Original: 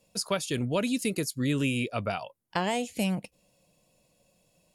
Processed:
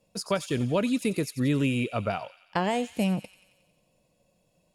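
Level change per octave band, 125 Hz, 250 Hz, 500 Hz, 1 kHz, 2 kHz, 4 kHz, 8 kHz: +2.5, +2.5, +2.5, +2.0, −0.5, −2.0, −4.5 decibels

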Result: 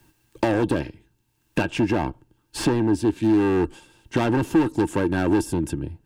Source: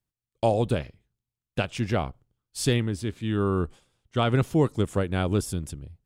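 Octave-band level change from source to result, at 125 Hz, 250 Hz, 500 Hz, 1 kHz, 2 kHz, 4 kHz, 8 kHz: −1.5, +7.5, +2.5, +3.0, +5.0, −1.0, 0.0 decibels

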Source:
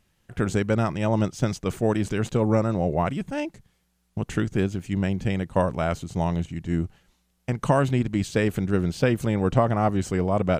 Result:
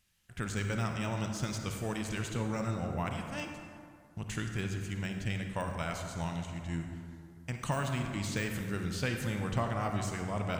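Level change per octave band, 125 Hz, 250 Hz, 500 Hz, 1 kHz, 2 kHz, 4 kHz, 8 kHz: −9.5, −12.0, −14.5, −10.0, −5.0, −3.0, −2.5 decibels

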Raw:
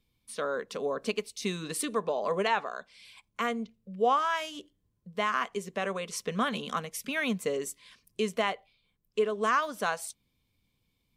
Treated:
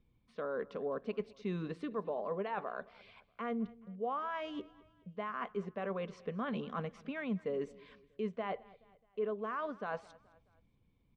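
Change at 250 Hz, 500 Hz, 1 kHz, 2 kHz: −4.0, −6.5, −10.5, −12.5 decibels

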